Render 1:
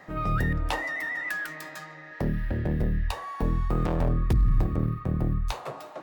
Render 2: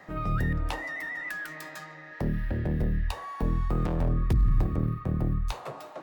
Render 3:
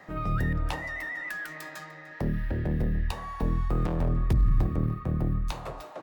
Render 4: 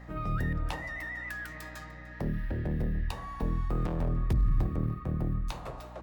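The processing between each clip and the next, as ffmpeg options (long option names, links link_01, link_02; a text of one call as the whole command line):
ffmpeg -i in.wav -filter_complex "[0:a]acrossover=split=320[link_01][link_02];[link_02]acompressor=threshold=-34dB:ratio=2[link_03];[link_01][link_03]amix=inputs=2:normalize=0,volume=-1dB" out.wav
ffmpeg -i in.wav -filter_complex "[0:a]asplit=2[link_01][link_02];[link_02]adelay=297.4,volume=-16dB,highshelf=frequency=4000:gain=-6.69[link_03];[link_01][link_03]amix=inputs=2:normalize=0" out.wav
ffmpeg -i in.wav -af "aeval=exprs='val(0)+0.00708*(sin(2*PI*60*n/s)+sin(2*PI*2*60*n/s)/2+sin(2*PI*3*60*n/s)/3+sin(2*PI*4*60*n/s)/4+sin(2*PI*5*60*n/s)/5)':channel_layout=same,volume=-3.5dB" out.wav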